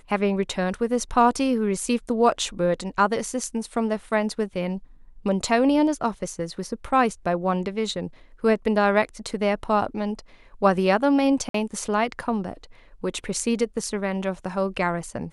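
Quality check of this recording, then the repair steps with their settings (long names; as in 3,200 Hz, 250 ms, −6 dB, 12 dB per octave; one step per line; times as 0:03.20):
0:11.49–0:11.54: drop-out 53 ms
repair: repair the gap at 0:11.49, 53 ms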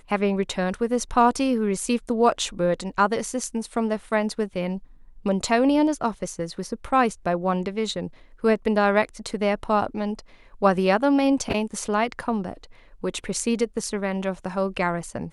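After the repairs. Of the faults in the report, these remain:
none of them is left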